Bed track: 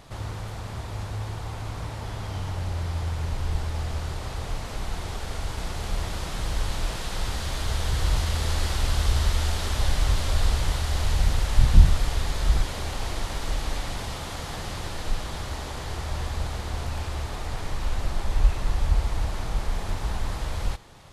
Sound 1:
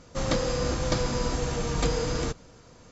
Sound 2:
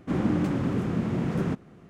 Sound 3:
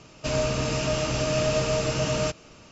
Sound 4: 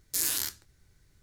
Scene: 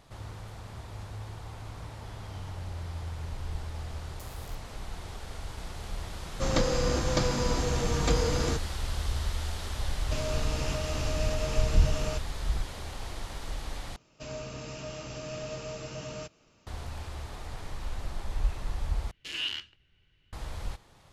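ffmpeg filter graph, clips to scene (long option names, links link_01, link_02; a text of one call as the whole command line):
ffmpeg -i bed.wav -i cue0.wav -i cue1.wav -i cue2.wav -i cue3.wav -filter_complex "[4:a]asplit=2[link_01][link_02];[3:a]asplit=2[link_03][link_04];[0:a]volume=-8.5dB[link_05];[link_01]acompressor=threshold=-34dB:ratio=6:attack=3.2:release=140:knee=1:detection=peak[link_06];[link_03]alimiter=limit=-19dB:level=0:latency=1:release=321[link_07];[link_02]lowpass=frequency=2900:width_type=q:width=14[link_08];[link_05]asplit=3[link_09][link_10][link_11];[link_09]atrim=end=13.964[link_12];[link_04]atrim=end=2.71,asetpts=PTS-STARTPTS,volume=-14dB[link_13];[link_10]atrim=start=16.666:end=19.114[link_14];[link_08]atrim=end=1.22,asetpts=PTS-STARTPTS,volume=-5.5dB[link_15];[link_11]atrim=start=20.326[link_16];[link_06]atrim=end=1.22,asetpts=PTS-STARTPTS,volume=-14dB,afade=type=in:duration=0.004:curve=hsin,afade=type=out:start_time=1.216:duration=0.004:curve=hsin,adelay=4060[link_17];[1:a]atrim=end=2.91,asetpts=PTS-STARTPTS,volume=-0.5dB,afade=type=in:duration=0.004:curve=hsin,afade=type=out:start_time=2.906:duration=0.004:curve=hsin,adelay=6250[link_18];[link_07]atrim=end=2.71,asetpts=PTS-STARTPTS,volume=-5.5dB,afade=type=in:duration=0.004:curve=hsin,afade=type=out:start_time=2.706:duration=0.004:curve=hsin,adelay=9870[link_19];[link_12][link_13]acrossfade=duration=0.004:curve1=hsin:curve2=hsin[link_20];[link_20][link_14]acrossfade=duration=0.004:curve1=hsin:curve2=hsin[link_21];[link_21][link_15]acrossfade=duration=0.004:curve1=hsin:curve2=hsin[link_22];[link_22][link_16]acrossfade=duration=0.004:curve1=hsin:curve2=hsin[link_23];[link_23][link_17][link_18][link_19]amix=inputs=4:normalize=0" out.wav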